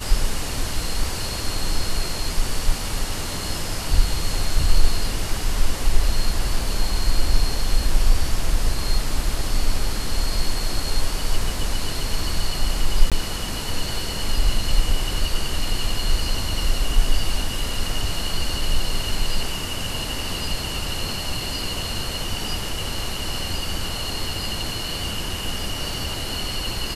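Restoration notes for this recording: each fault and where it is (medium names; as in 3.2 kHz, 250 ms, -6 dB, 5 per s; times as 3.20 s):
13.10–13.12 s: dropout 17 ms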